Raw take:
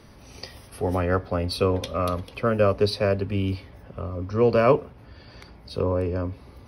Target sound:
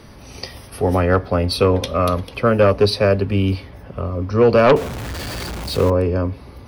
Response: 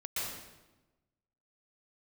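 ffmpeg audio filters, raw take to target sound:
-filter_complex "[0:a]asettb=1/sr,asplit=3[link_01][link_02][link_03];[link_01]atrim=end=4.764[link_04];[link_02]atrim=start=4.76:end=5.9,asetpts=PTS-STARTPTS,afade=type=in:duration=0.004:curve=qsin,afade=type=out:start_time=1.136:duration=0.004:curve=qsin,aeval=exprs='val(0)+0.5*0.0266*sgn(val(0))':channel_layout=same[link_05];[link_03]atrim=start=5.896[link_06];[link_04][link_05]acrossfade=duration=0.004:curve1=hsin:curve2=qsin[link_07];[link_07][link_06]acrossfade=duration=0.004:curve1=qsin:curve2=hsin,aeval=exprs='0.631*(cos(1*acos(clip(val(0)/0.631,-1,1)))-cos(1*PI/2))+0.316*(cos(5*acos(clip(val(0)/0.631,-1,1)))-cos(5*PI/2))+0.1*(cos(7*acos(clip(val(0)/0.631,-1,1)))-cos(7*PI/2))':channel_layout=same"

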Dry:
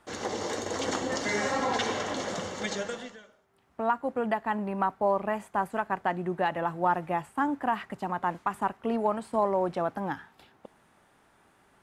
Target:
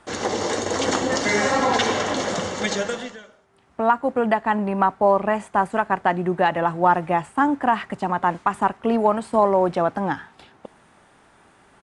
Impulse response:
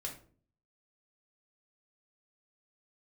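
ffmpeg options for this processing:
-af "aresample=22050,aresample=44100,volume=8.5dB"

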